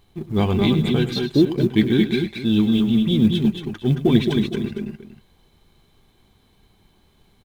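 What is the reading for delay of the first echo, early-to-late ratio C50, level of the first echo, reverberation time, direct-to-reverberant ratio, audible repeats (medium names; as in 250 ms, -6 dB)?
103 ms, no reverb, -13.0 dB, no reverb, no reverb, 3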